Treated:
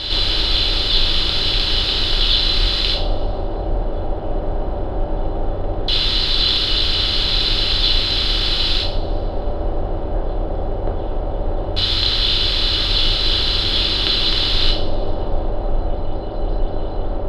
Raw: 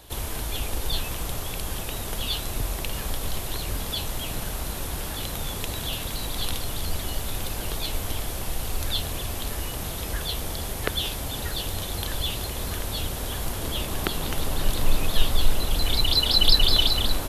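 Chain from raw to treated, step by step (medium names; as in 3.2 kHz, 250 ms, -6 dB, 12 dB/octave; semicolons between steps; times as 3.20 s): spectral levelling over time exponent 0.4; in parallel at +1 dB: gain riding; on the sum: LFO low-pass square 0.17 Hz 700–4000 Hz; two-slope reverb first 0.46 s, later 2 s, from -21 dB, DRR -2 dB; trim -12.5 dB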